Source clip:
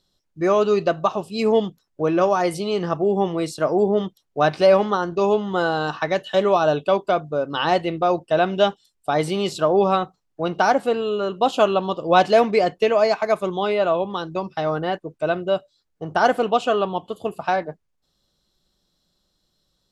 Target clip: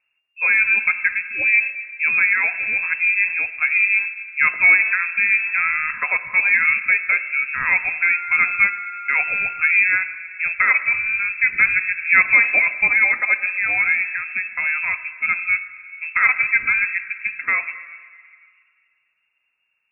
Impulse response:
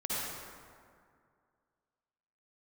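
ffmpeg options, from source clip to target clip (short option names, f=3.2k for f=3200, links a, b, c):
-filter_complex "[0:a]asettb=1/sr,asplit=3[a][b][c];[a]atrim=end=8.014[d];[b]atrim=start=8.01:end=9.71,asetpts=PTS-STARTPTS,afade=t=in:d=0.004:c=qsin,afade=t=out:st=1.696:d=0.004:c=qsin,aeval=exprs='val(0)+0.0251*sin(2*PI*1400*n/s)':c=same[e];[c]atrim=start=9.706[f];[d][e]acrossfade=d=0.004:c1=hsin:c2=qsin[g];[g][f]acrossfade=d=0.004:c1=qsin:c2=hsin,asplit=2[h][i];[1:a]atrim=start_sample=2205[j];[i][j]afir=irnorm=-1:irlink=0,volume=-17.5dB[k];[h][k]amix=inputs=2:normalize=0,lowpass=f=2.4k:t=q:w=0.5098,lowpass=f=2.4k:t=q:w=0.6013,lowpass=f=2.4k:t=q:w=0.9,lowpass=f=2.4k:t=q:w=2.563,afreqshift=-2800"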